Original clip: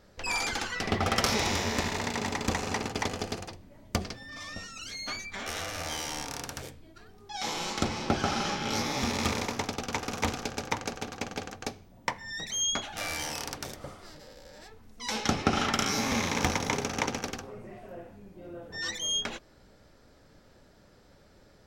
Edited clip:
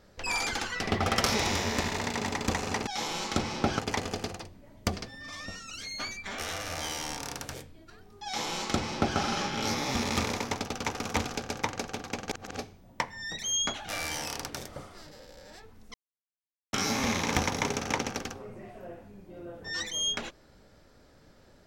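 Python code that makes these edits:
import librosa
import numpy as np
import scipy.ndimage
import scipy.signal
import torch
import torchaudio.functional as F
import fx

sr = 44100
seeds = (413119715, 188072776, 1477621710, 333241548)

y = fx.edit(x, sr, fx.duplicate(start_s=7.33, length_s=0.92, to_s=2.87),
    fx.reverse_span(start_s=11.39, length_s=0.28),
    fx.silence(start_s=15.02, length_s=0.79), tone=tone)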